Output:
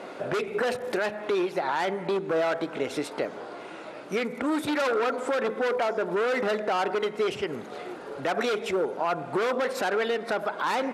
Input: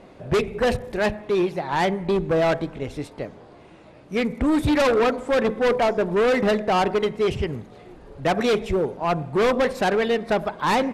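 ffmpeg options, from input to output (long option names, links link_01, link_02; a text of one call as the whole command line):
ffmpeg -i in.wav -af "acompressor=threshold=-30dB:ratio=10,highpass=340,equalizer=frequency=1400:width=7.1:gain=8.5,alimiter=level_in=2dB:limit=-24dB:level=0:latency=1:release=30,volume=-2dB,volume=9dB" out.wav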